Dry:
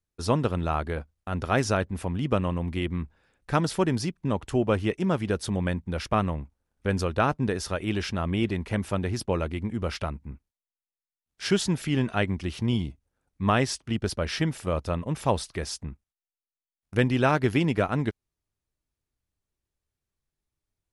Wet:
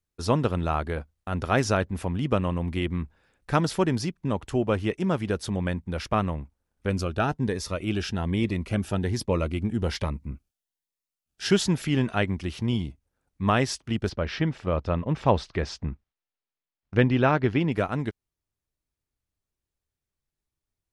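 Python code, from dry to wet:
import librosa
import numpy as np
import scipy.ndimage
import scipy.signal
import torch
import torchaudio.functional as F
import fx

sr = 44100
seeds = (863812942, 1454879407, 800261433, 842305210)

y = fx.notch_cascade(x, sr, direction='rising', hz=1.2, at=(6.89, 11.51))
y = fx.air_absorb(y, sr, metres=170.0, at=(14.09, 17.72))
y = fx.dynamic_eq(y, sr, hz=9200.0, q=3.4, threshold_db=-57.0, ratio=4.0, max_db=-4)
y = fx.rider(y, sr, range_db=10, speed_s=2.0)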